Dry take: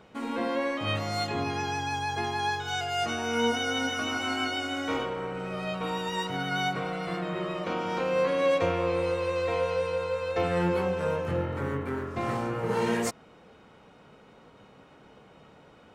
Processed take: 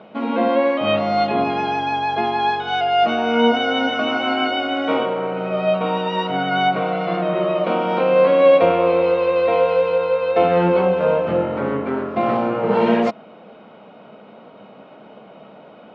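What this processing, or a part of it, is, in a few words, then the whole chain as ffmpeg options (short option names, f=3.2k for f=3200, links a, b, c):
kitchen radio: -af "highpass=200,equalizer=f=210:t=q:w=4:g=8,equalizer=f=640:t=q:w=4:g=10,equalizer=f=1.8k:t=q:w=4:g=-6,lowpass=f=3.5k:w=0.5412,lowpass=f=3.5k:w=1.3066,volume=9dB"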